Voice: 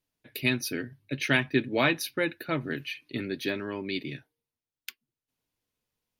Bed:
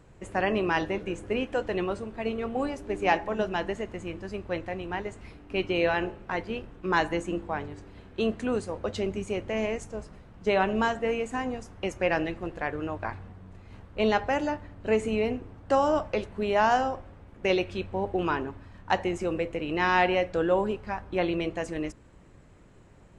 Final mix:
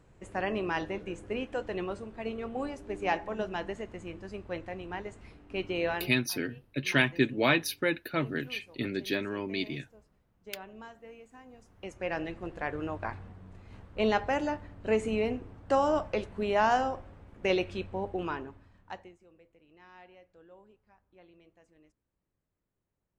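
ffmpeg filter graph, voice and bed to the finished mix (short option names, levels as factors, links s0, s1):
-filter_complex "[0:a]adelay=5650,volume=0.944[s0];[1:a]volume=4.73,afade=t=out:st=5.92:d=0.27:silence=0.158489,afade=t=in:st=11.48:d=1.27:silence=0.112202,afade=t=out:st=17.66:d=1.51:silence=0.0375837[s1];[s0][s1]amix=inputs=2:normalize=0"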